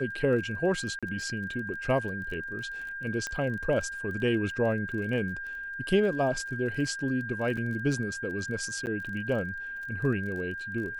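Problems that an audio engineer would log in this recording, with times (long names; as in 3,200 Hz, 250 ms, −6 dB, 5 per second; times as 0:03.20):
surface crackle 26 per second −38 dBFS
whistle 1,600 Hz −35 dBFS
0:00.99–0:01.03: drop-out 36 ms
0:03.27: click −19 dBFS
0:07.57: drop-out 4.5 ms
0:08.86–0:08.87: drop-out 9.3 ms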